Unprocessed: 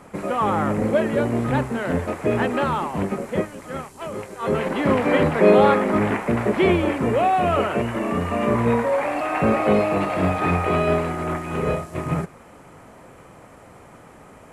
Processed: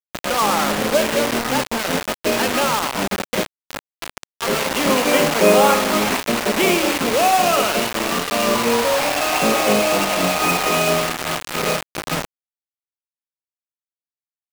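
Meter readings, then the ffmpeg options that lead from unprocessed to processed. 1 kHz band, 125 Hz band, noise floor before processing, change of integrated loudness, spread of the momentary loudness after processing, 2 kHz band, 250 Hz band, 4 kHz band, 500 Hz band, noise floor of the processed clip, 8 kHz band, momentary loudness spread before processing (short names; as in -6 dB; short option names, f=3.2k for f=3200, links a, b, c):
+3.5 dB, -5.5 dB, -46 dBFS, +3.0 dB, 10 LU, +6.5 dB, -1.0 dB, +15.5 dB, +1.0 dB, under -85 dBFS, n/a, 9 LU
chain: -filter_complex "[0:a]highpass=f=170:w=0.5412,highpass=f=170:w=1.3066,equalizer=f=380:t=q:w=4:g=-4,equalizer=f=1.8k:t=q:w=4:g=-4,equalizer=f=2.8k:t=q:w=4:g=8,lowpass=f=7.1k:w=0.5412,lowpass=f=7.1k:w=1.3066,asplit=2[a][b];[b]aecho=0:1:66|132|198|264|330:0.251|0.128|0.0653|0.0333|0.017[c];[a][c]amix=inputs=2:normalize=0,acrusher=bits=3:mix=0:aa=0.000001,lowshelf=f=330:g=-4.5,volume=3.5dB"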